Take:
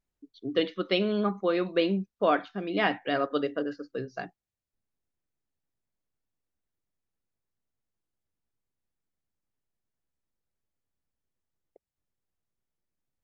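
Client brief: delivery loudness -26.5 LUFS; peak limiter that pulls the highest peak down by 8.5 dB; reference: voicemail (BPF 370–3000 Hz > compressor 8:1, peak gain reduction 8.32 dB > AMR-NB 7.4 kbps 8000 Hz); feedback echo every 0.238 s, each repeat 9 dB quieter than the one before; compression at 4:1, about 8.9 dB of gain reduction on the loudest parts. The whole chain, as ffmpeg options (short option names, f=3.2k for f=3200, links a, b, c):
-af "acompressor=threshold=-30dB:ratio=4,alimiter=level_in=3dB:limit=-24dB:level=0:latency=1,volume=-3dB,highpass=370,lowpass=3k,aecho=1:1:238|476|714|952:0.355|0.124|0.0435|0.0152,acompressor=threshold=-40dB:ratio=8,volume=20dB" -ar 8000 -c:a libopencore_amrnb -b:a 7400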